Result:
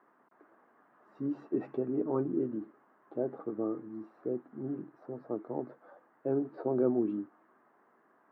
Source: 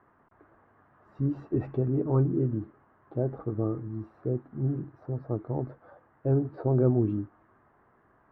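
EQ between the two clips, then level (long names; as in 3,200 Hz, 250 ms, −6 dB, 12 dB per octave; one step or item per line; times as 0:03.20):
high-pass filter 210 Hz 24 dB per octave
−2.5 dB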